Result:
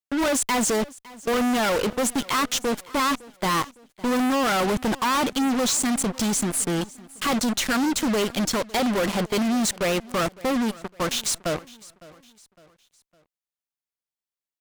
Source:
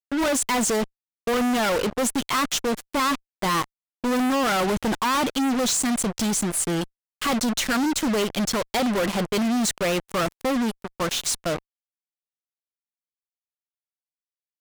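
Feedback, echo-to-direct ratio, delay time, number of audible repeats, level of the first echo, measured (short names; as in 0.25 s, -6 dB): 42%, -20.0 dB, 0.558 s, 2, -21.0 dB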